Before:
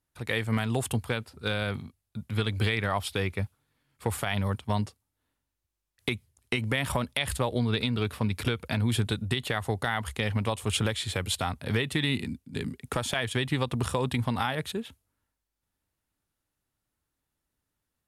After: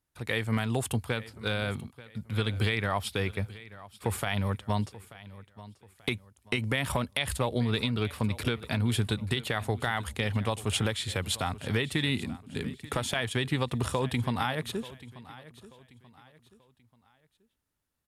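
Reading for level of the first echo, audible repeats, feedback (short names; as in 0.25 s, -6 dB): -18.0 dB, 2, 36%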